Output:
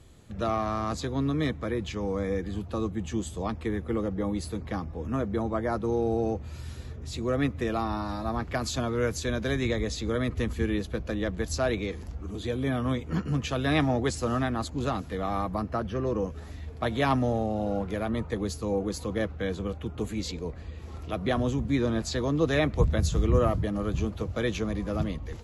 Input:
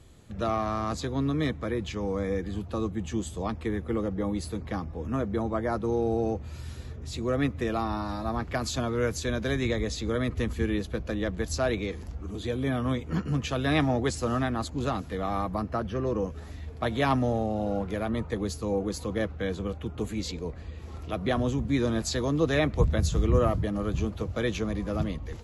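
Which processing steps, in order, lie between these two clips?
21.75–22.4 high shelf 5600 Hz -> 9000 Hz -8.5 dB

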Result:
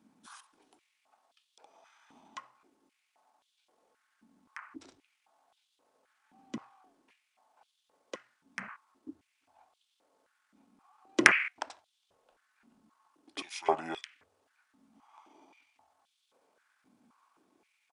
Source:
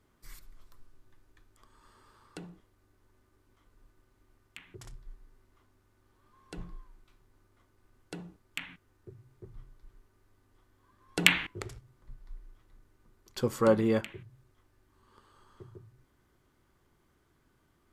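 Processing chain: pitch shift -5.5 st; stepped high-pass 3.8 Hz 230–3400 Hz

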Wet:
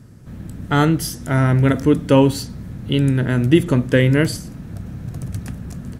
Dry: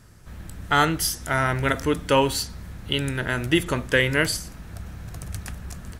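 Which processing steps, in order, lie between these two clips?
graphic EQ 125/250/500 Hz +12/+12/+5 dB; gain -2.5 dB

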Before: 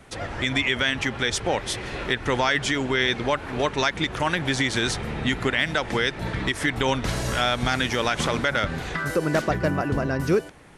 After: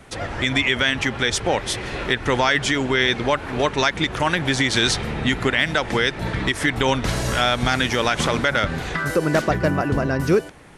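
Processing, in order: 4.68–5.2 dynamic EQ 4200 Hz, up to +5 dB, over -38 dBFS, Q 0.94; gain +3.5 dB

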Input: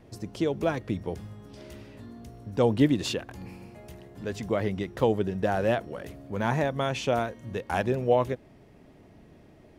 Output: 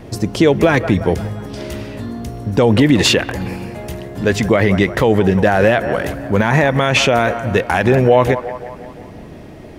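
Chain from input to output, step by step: dynamic EQ 2000 Hz, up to +7 dB, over -48 dBFS, Q 1.6; on a send: band-limited delay 0.175 s, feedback 55%, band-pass 980 Hz, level -15.5 dB; on the sum: maximiser +19 dB; gain -1 dB

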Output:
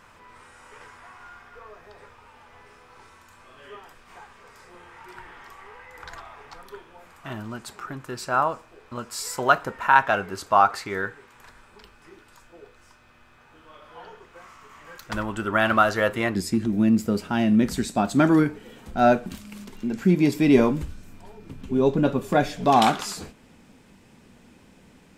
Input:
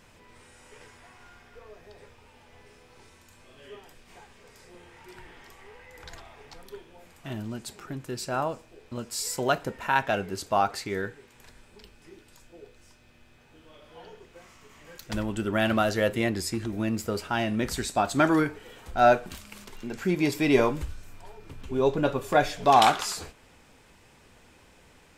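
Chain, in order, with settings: bell 1200 Hz +12.5 dB 1.2 oct, from 16.35 s 210 Hz; gain -1 dB

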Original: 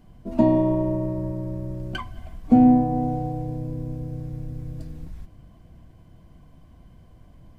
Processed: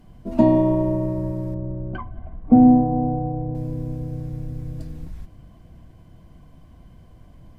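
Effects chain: 1.54–3.55 LPF 1100 Hz 12 dB/oct; gain +2.5 dB; Vorbis 192 kbps 44100 Hz

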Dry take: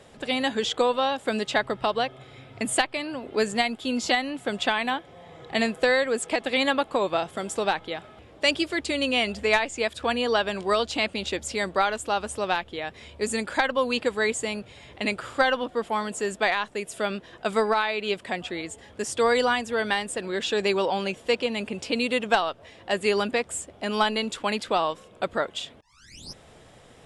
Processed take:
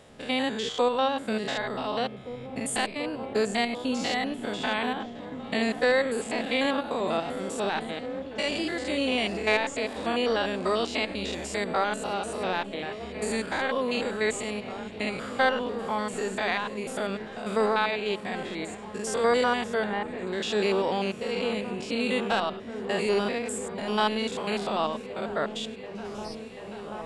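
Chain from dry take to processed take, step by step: stepped spectrum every 0.1 s; 19.84–20.27 Bessel low-pass 1600 Hz, order 2; repeats that get brighter 0.735 s, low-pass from 200 Hz, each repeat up 1 oct, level -6 dB

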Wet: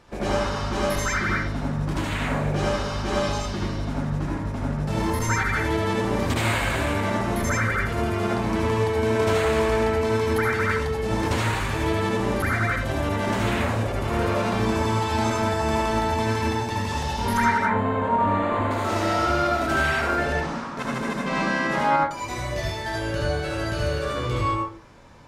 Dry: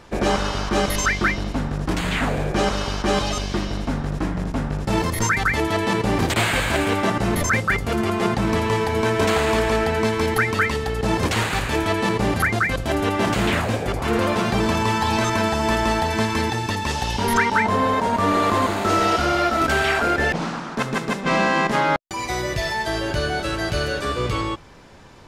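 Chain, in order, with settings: 17.58–18.71 running mean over 8 samples; reverb RT60 0.55 s, pre-delay 62 ms, DRR -3.5 dB; gain -8.5 dB

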